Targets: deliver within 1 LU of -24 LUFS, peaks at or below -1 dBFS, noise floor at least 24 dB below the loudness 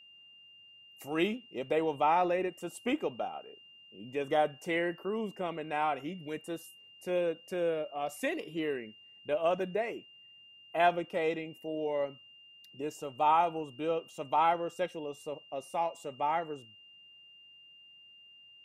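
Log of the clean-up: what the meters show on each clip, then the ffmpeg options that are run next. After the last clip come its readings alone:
steady tone 2.8 kHz; tone level -54 dBFS; loudness -33.0 LUFS; peak level -15.0 dBFS; loudness target -24.0 LUFS
-> -af "bandreject=f=2800:w=30"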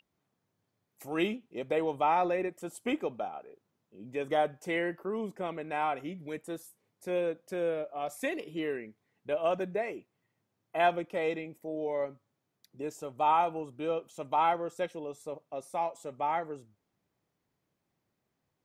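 steady tone not found; loudness -33.0 LUFS; peak level -15.0 dBFS; loudness target -24.0 LUFS
-> -af "volume=2.82"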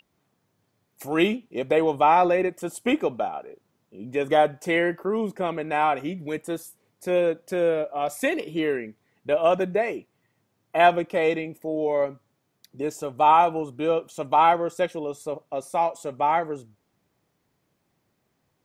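loudness -24.0 LUFS; peak level -6.0 dBFS; noise floor -73 dBFS

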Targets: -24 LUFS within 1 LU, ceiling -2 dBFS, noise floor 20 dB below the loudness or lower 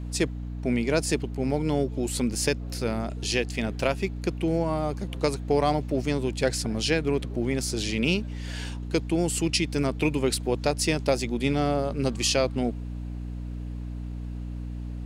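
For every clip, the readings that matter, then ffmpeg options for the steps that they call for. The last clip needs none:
hum 60 Hz; highest harmonic 300 Hz; hum level -31 dBFS; loudness -27.5 LUFS; peak level -9.5 dBFS; loudness target -24.0 LUFS
-> -af "bandreject=f=60:t=h:w=6,bandreject=f=120:t=h:w=6,bandreject=f=180:t=h:w=6,bandreject=f=240:t=h:w=6,bandreject=f=300:t=h:w=6"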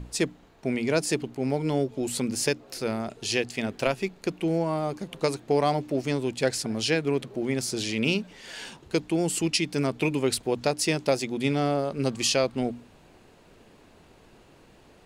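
hum not found; loudness -27.5 LUFS; peak level -9.0 dBFS; loudness target -24.0 LUFS
-> -af "volume=1.5"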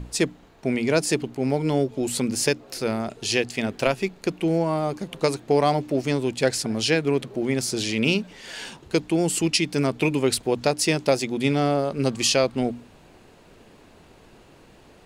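loudness -24.0 LUFS; peak level -5.0 dBFS; noise floor -52 dBFS

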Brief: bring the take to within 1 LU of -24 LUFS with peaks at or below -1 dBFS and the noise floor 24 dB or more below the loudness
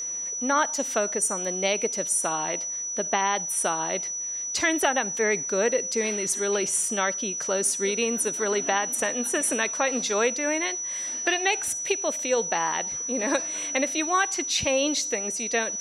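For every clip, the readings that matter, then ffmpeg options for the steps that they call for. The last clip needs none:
steady tone 5.9 kHz; tone level -29 dBFS; loudness -24.5 LUFS; peak level -8.0 dBFS; loudness target -24.0 LUFS
-> -af "bandreject=f=5900:w=30"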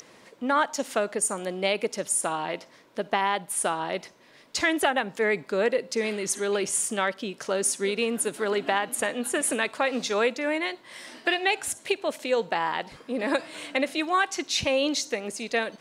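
steady tone not found; loudness -27.0 LUFS; peak level -8.5 dBFS; loudness target -24.0 LUFS
-> -af "volume=1.41"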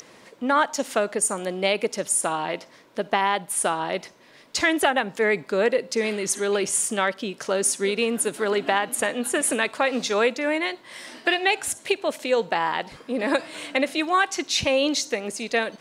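loudness -24.0 LUFS; peak level -5.5 dBFS; noise floor -51 dBFS

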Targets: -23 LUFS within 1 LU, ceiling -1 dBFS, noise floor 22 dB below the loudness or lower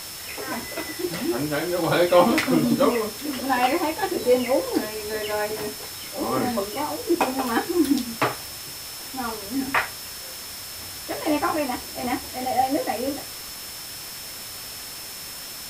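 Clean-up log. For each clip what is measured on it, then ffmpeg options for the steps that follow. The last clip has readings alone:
steady tone 5.3 kHz; tone level -40 dBFS; noise floor -37 dBFS; noise floor target -47 dBFS; loudness -25.0 LUFS; peak level -4.0 dBFS; loudness target -23.0 LUFS
-> -af "bandreject=f=5300:w=30"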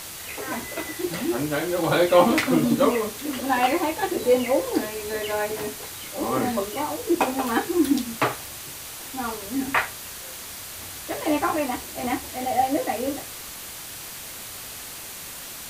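steady tone not found; noise floor -38 dBFS; noise floor target -48 dBFS
-> -af "afftdn=nr=10:nf=-38"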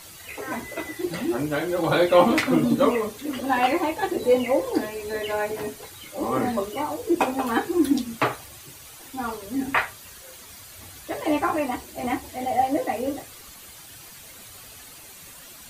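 noise floor -45 dBFS; noise floor target -47 dBFS
-> -af "afftdn=nr=6:nf=-45"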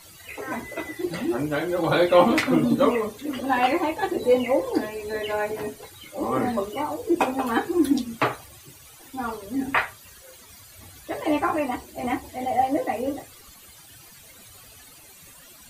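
noise floor -49 dBFS; loudness -24.5 LUFS; peak level -4.0 dBFS; loudness target -23.0 LUFS
-> -af "volume=1.19"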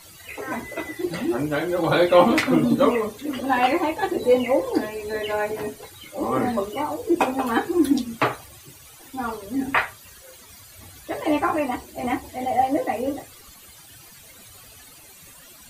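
loudness -23.0 LUFS; peak level -2.5 dBFS; noise floor -47 dBFS

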